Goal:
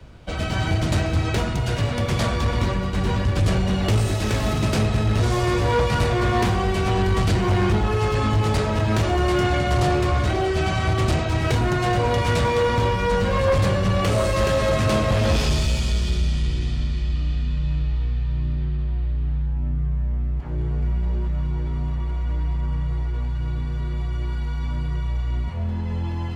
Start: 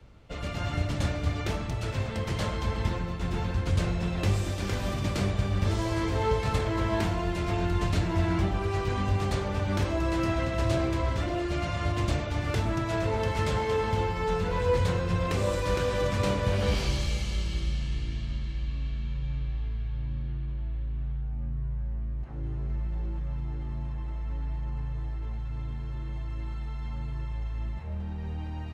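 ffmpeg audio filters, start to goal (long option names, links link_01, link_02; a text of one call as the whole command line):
ffmpeg -i in.wav -af "aeval=exprs='0.2*sin(PI/2*1.78*val(0)/0.2)':channel_layout=same,asetrate=48069,aresample=44100" out.wav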